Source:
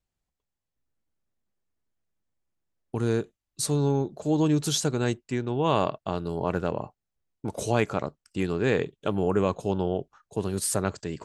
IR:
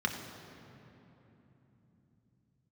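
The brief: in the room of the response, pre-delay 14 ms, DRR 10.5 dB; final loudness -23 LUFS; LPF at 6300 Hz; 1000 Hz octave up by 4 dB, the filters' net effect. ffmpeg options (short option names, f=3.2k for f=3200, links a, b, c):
-filter_complex "[0:a]lowpass=6.3k,equalizer=f=1k:t=o:g=5,asplit=2[a][b];[1:a]atrim=start_sample=2205,adelay=14[c];[b][c]afir=irnorm=-1:irlink=0,volume=-18dB[d];[a][d]amix=inputs=2:normalize=0,volume=3.5dB"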